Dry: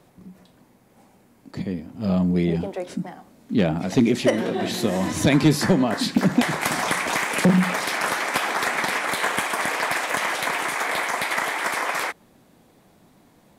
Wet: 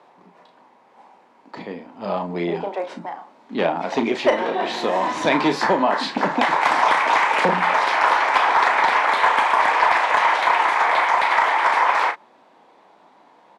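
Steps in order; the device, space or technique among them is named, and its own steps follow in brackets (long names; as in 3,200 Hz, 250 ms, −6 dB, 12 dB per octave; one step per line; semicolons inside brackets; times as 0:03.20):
intercom (band-pass filter 430–3,600 Hz; parametric band 930 Hz +10 dB 0.55 octaves; soft clipping −7 dBFS, distortion −26 dB; double-tracking delay 35 ms −8 dB)
level +3.5 dB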